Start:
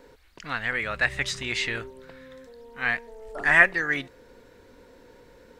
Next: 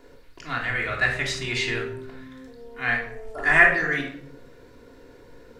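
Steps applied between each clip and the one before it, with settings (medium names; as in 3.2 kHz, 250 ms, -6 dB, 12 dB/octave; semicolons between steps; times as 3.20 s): reverberation RT60 0.65 s, pre-delay 3 ms, DRR -1.5 dB; trim -2 dB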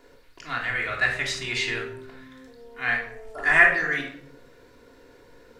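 bass shelf 480 Hz -6 dB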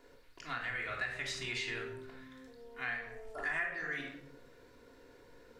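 compression 4:1, threshold -29 dBFS, peak gain reduction 15 dB; trim -6.5 dB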